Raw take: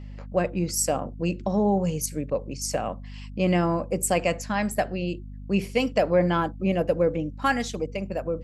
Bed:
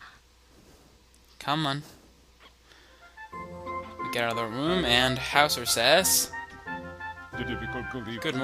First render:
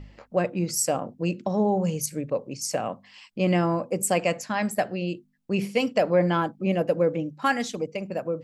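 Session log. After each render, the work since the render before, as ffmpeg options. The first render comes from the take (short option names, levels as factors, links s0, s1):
-af "bandreject=f=50:t=h:w=4,bandreject=f=100:t=h:w=4,bandreject=f=150:t=h:w=4,bandreject=f=200:t=h:w=4,bandreject=f=250:t=h:w=4"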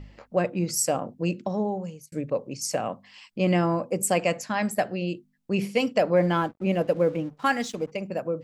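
-filter_complex "[0:a]asplit=3[s0][s1][s2];[s0]afade=t=out:st=6.15:d=0.02[s3];[s1]aeval=exprs='sgn(val(0))*max(abs(val(0))-0.00316,0)':c=same,afade=t=in:st=6.15:d=0.02,afade=t=out:st=7.9:d=0.02[s4];[s2]afade=t=in:st=7.9:d=0.02[s5];[s3][s4][s5]amix=inputs=3:normalize=0,asplit=2[s6][s7];[s6]atrim=end=2.12,asetpts=PTS-STARTPTS,afade=t=out:st=1.33:d=0.79[s8];[s7]atrim=start=2.12,asetpts=PTS-STARTPTS,afade=t=in:d=0.004:c=hsin[s9];[s8][s9]concat=n=2:v=0:a=1"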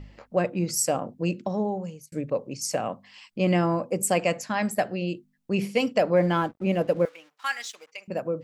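-filter_complex "[0:a]asettb=1/sr,asplit=3[s0][s1][s2];[s0]atrim=end=7.054[s3];[s1]atrim=start=7.05:end=8.08,asetpts=PTS-STARTPTS,afade=t=in:d=0.004:c=qsin,afade=t=out:st=1.026:d=0.004:c=qsin,highpass=1500[s4];[s2]atrim=start=8.076[s5];[s3][s4]acrossfade=d=0.004:c1=hsin:c2=qsin[s6];[s6][s5]acrossfade=d=0.004:c1=qsin:c2=hsin"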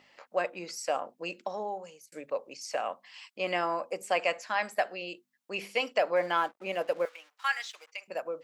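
-filter_complex "[0:a]acrossover=split=4400[s0][s1];[s1]acompressor=threshold=0.00316:ratio=4:attack=1:release=60[s2];[s0][s2]amix=inputs=2:normalize=0,highpass=700"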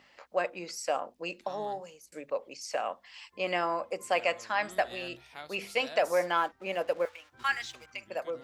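-filter_complex "[1:a]volume=0.0631[s0];[0:a][s0]amix=inputs=2:normalize=0"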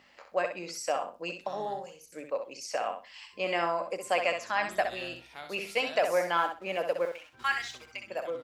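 -af "aecho=1:1:64|128|192:0.447|0.0893|0.0179"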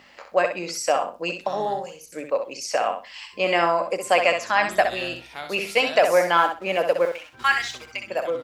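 -af "volume=2.82"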